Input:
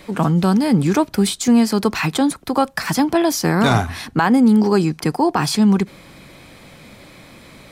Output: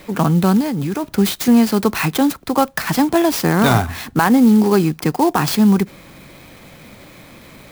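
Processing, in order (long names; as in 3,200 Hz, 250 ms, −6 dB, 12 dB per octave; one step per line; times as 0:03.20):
0:00.61–0:01.04: output level in coarse steps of 22 dB
converter with an unsteady clock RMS 0.031 ms
level +1.5 dB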